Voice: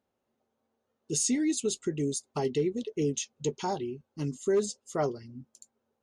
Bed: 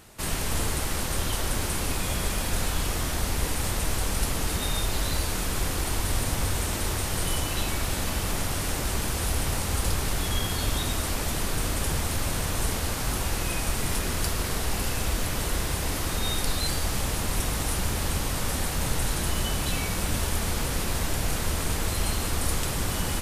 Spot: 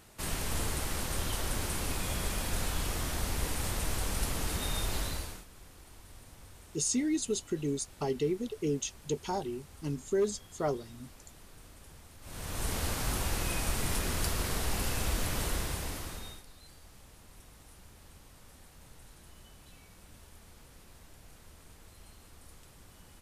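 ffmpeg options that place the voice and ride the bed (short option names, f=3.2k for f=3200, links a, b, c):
-filter_complex "[0:a]adelay=5650,volume=-2.5dB[a];[1:a]volume=15.5dB,afade=t=out:st=4.97:d=0.48:silence=0.1,afade=t=in:st=12.21:d=0.61:silence=0.0841395,afade=t=out:st=15.43:d=1.01:silence=0.0707946[b];[a][b]amix=inputs=2:normalize=0"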